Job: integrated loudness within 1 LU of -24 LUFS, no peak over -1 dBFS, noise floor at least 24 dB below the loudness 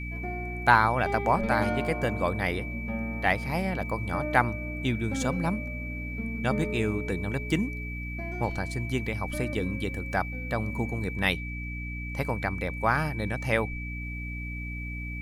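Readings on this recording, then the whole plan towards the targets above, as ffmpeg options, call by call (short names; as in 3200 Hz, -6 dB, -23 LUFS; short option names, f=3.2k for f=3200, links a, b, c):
hum 60 Hz; harmonics up to 300 Hz; hum level -33 dBFS; steady tone 2300 Hz; tone level -38 dBFS; loudness -29.0 LUFS; peak -5.0 dBFS; loudness target -24.0 LUFS
-> -af "bandreject=f=60:t=h:w=4,bandreject=f=120:t=h:w=4,bandreject=f=180:t=h:w=4,bandreject=f=240:t=h:w=4,bandreject=f=300:t=h:w=4"
-af "bandreject=f=2.3k:w=30"
-af "volume=5dB,alimiter=limit=-1dB:level=0:latency=1"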